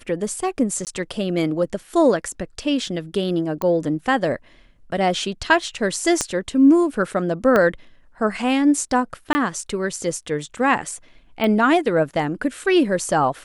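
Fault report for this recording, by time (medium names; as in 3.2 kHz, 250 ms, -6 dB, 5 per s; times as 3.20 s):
0.85–0.87 s: dropout 18 ms
3.62 s: pop -11 dBFS
6.21 s: pop -7 dBFS
7.56 s: pop -7 dBFS
9.33–9.35 s: dropout 20 ms
11.44 s: pop -11 dBFS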